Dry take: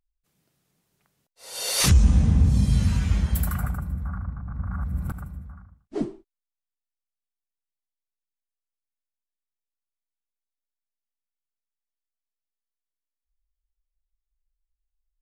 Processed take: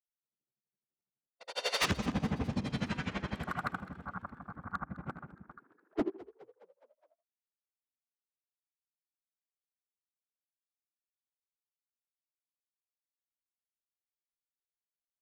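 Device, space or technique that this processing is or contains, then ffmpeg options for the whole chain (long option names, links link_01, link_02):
helicopter radio: -filter_complex "[0:a]highpass=330,lowpass=2900,aeval=exprs='val(0)*pow(10,-20*(0.5-0.5*cos(2*PI*12*n/s))/20)':channel_layout=same,asoftclip=type=hard:threshold=-31.5dB,asplit=3[link_01][link_02][link_03];[link_01]afade=type=out:start_time=5.57:duration=0.02[link_04];[link_02]highpass=frequency=620:width=0.5412,highpass=frequency=620:width=1.3066,afade=type=in:start_time=5.57:duration=0.02,afade=type=out:start_time=5.97:duration=0.02[link_05];[link_03]afade=type=in:start_time=5.97:duration=0.02[link_06];[link_04][link_05][link_06]amix=inputs=3:normalize=0,anlmdn=0.000158,asplit=6[link_07][link_08][link_09][link_10][link_11][link_12];[link_08]adelay=208,afreqshift=58,volume=-19dB[link_13];[link_09]adelay=416,afreqshift=116,volume=-23.9dB[link_14];[link_10]adelay=624,afreqshift=174,volume=-28.8dB[link_15];[link_11]adelay=832,afreqshift=232,volume=-33.6dB[link_16];[link_12]adelay=1040,afreqshift=290,volume=-38.5dB[link_17];[link_07][link_13][link_14][link_15][link_16][link_17]amix=inputs=6:normalize=0,volume=7dB"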